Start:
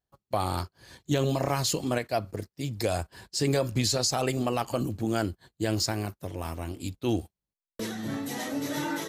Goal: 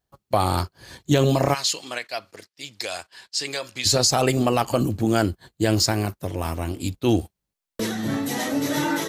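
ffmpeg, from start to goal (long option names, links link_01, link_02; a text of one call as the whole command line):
ffmpeg -i in.wav -filter_complex "[0:a]asplit=3[link_01][link_02][link_03];[link_01]afade=type=out:start_time=1.53:duration=0.02[link_04];[link_02]bandpass=frequency=3500:width_type=q:width=0.69:csg=0,afade=type=in:start_time=1.53:duration=0.02,afade=type=out:start_time=3.85:duration=0.02[link_05];[link_03]afade=type=in:start_time=3.85:duration=0.02[link_06];[link_04][link_05][link_06]amix=inputs=3:normalize=0,volume=7.5dB" out.wav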